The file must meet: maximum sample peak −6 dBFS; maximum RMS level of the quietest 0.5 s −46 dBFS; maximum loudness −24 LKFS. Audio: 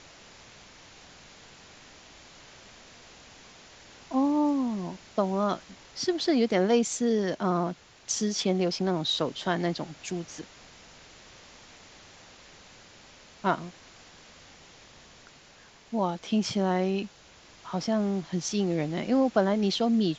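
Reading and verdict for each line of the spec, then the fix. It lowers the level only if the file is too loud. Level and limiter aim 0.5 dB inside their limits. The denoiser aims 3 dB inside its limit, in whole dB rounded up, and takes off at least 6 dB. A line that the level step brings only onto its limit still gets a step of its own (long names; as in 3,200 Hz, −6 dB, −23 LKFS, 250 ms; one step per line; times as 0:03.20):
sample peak −9.0 dBFS: in spec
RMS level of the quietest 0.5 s −55 dBFS: in spec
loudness −28.0 LKFS: in spec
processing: no processing needed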